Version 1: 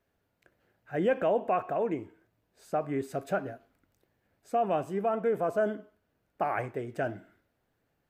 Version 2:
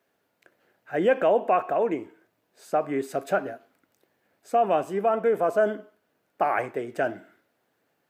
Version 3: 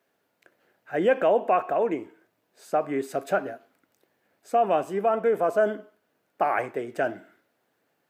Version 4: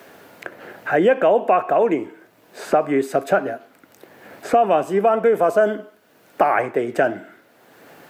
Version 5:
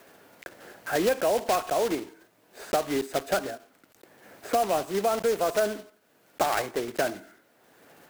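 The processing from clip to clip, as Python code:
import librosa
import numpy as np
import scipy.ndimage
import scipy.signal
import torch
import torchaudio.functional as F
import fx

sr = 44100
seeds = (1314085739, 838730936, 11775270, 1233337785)

y1 = scipy.signal.sosfilt(scipy.signal.bessel(2, 280.0, 'highpass', norm='mag', fs=sr, output='sos'), x)
y1 = y1 * librosa.db_to_amplitude(6.5)
y2 = fx.low_shelf(y1, sr, hz=67.0, db=-7.0)
y3 = fx.band_squash(y2, sr, depth_pct=70)
y3 = y3 * librosa.db_to_amplitude(7.0)
y4 = fx.block_float(y3, sr, bits=3)
y4 = y4 * librosa.db_to_amplitude(-9.0)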